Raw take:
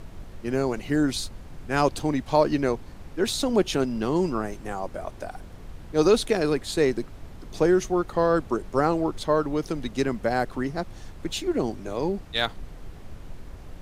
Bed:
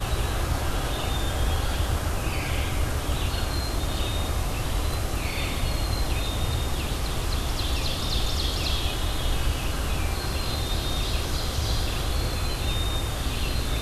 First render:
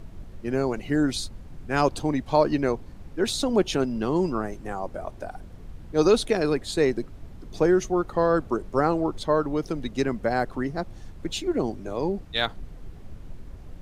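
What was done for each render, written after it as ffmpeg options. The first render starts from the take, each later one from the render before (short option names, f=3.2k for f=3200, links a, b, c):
-af "afftdn=nr=6:nf=-43"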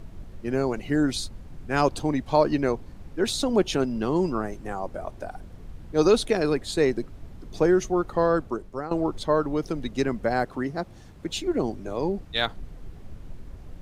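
-filter_complex "[0:a]asettb=1/sr,asplit=3[a][b][c];[a]atrim=end=10.444[d];[b]atrim=start=10.44:end=11.33,asetpts=PTS-STARTPTS,afade=t=in:d=0.004:c=qsin,afade=t=out:st=0.886:d=0.004:c=qsin,highpass=f=90:p=1[e];[c]atrim=start=11.326[f];[d][e]acrossfade=d=0.004:c1=hsin:c2=qsin[g];[g][f]acrossfade=d=0.004:c1=qsin:c2=hsin,asplit=2[h][i];[h]atrim=end=8.91,asetpts=PTS-STARTPTS,afade=t=out:st=8.27:d=0.64:silence=0.177828[j];[i]atrim=start=8.91,asetpts=PTS-STARTPTS,afade=t=in:d=0.004:c=hsin:silence=0.177828[k];[j][k]concat=n=2:v=0:a=1"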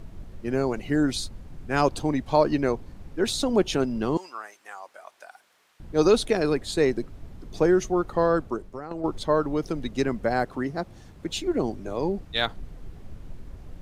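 -filter_complex "[0:a]asettb=1/sr,asplit=3[a][b][c];[a]atrim=end=4.174[d];[b]atrim=start=4.17:end=5.8,asetpts=PTS-STARTPTS,afade=t=in:d=0.004:c=qsin,afade=t=out:st=1.626:d=0.004:c=qsin,highpass=1.3k[e];[c]atrim=start=5.796[f];[d][e]acrossfade=d=0.004:c1=hsin:c2=qsin[g];[g][f]acrossfade=d=0.004:c1=qsin:c2=hsin,asettb=1/sr,asplit=3[h][i][j];[h]atrim=end=8.624[k];[i]atrim=start=8.62:end=9.04,asetpts=PTS-STARTPTS,afade=t=in:d=0.004:c=qsin,afade=t=out:st=0.416:d=0.004:c=qsin,acompressor=threshold=-30dB:ratio=4:attack=3.2:release=140:knee=1:detection=peak[l];[j]atrim=start=9.036[m];[k][l]acrossfade=d=0.004:c1=hsin:c2=qsin[n];[n][m]acrossfade=d=0.004:c1=qsin:c2=hsin"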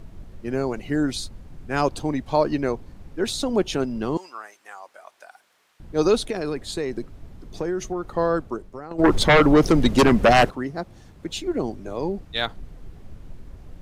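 -filter_complex "[0:a]asettb=1/sr,asplit=3[a][b][c];[a]atrim=end=6.264[d];[b]atrim=start=6.26:end=8.09,asetpts=PTS-STARTPTS,afade=t=in:d=0.004:c=qsin,afade=t=out:st=1.826:d=0.004:c=qsin,acompressor=threshold=-22dB:ratio=6:attack=3.2:release=140:knee=1:detection=peak[e];[c]atrim=start=8.086[f];[d][e]acrossfade=d=0.004:c1=hsin:c2=qsin[g];[g][f]acrossfade=d=0.004:c1=qsin:c2=hsin,asplit=3[h][i][j];[h]afade=t=out:st=8.98:d=0.02[k];[i]aeval=exprs='0.335*sin(PI/2*3.55*val(0)/0.335)':c=same,afade=t=in:st=8.98:d=0.02,afade=t=out:st=10.49:d=0.02[l];[j]afade=t=in:st=10.49:d=0.02[m];[k][l][m]amix=inputs=3:normalize=0"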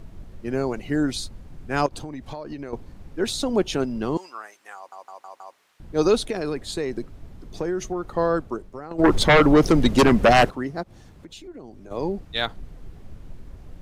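-filter_complex "[0:a]asettb=1/sr,asplit=3[a][b][c];[a]atrim=end=1.864[d];[b]atrim=start=1.86:end=2.73,asetpts=PTS-STARTPTS,afade=t=in:d=0.004:c=qsin,afade=t=out:st=0.866:d=0.004:c=qsin,acompressor=threshold=-30dB:ratio=10:attack=3.2:release=140:knee=1:detection=peak[e];[c]atrim=start=2.726[f];[d][e]acrossfade=d=0.004:c1=hsin:c2=qsin[g];[g][f]acrossfade=d=0.004:c1=qsin:c2=hsin,asplit=3[h][i][j];[h]afade=t=out:st=10.82:d=0.02[k];[i]acompressor=threshold=-42dB:ratio=3:attack=3.2:release=140:knee=1:detection=peak,afade=t=in:st=10.82:d=0.02,afade=t=out:st=11.9:d=0.02[l];[j]afade=t=in:st=11.9:d=0.02[m];[k][l][m]amix=inputs=3:normalize=0,asplit=6[n][o][p][q][r][s];[n]atrim=end=4.922[t];[o]atrim=start=4.758:end=4.922[u];[p]atrim=start=4.758:end=4.922[v];[q]atrim=start=4.758:end=4.922[w];[r]atrim=start=4.758:end=4.922[x];[s]atrim=start=5.558[y];[t][u]acrossfade=d=0.004:c1=hsin:c2=hsin[z];[z][v]acrossfade=d=0.004:c1=hsin:c2=hsin[aa];[aa][w]acrossfade=d=0.004:c1=hsin:c2=hsin[ab];[ab][x]acrossfade=d=0.004:c1=hsin:c2=hsin[ac];[ac][y]acrossfade=d=0.004:c1=hsin:c2=hsin"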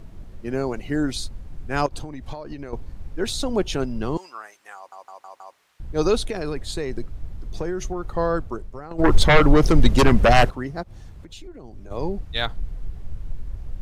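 -af "asubboost=boost=3:cutoff=120"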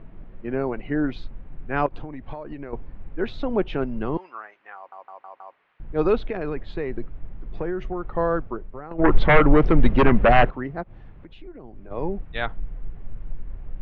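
-af "lowpass=f=2.6k:w=0.5412,lowpass=f=2.6k:w=1.3066,equalizer=f=72:w=1.6:g=-10.5"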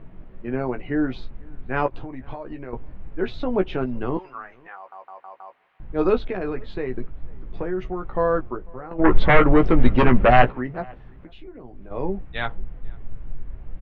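-filter_complex "[0:a]asplit=2[a][b];[b]adelay=16,volume=-7dB[c];[a][c]amix=inputs=2:normalize=0,asplit=2[d][e];[e]adelay=495.6,volume=-27dB,highshelf=f=4k:g=-11.2[f];[d][f]amix=inputs=2:normalize=0"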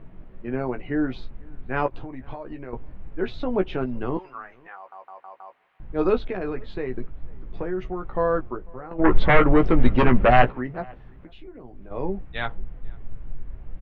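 -af "volume=-1.5dB"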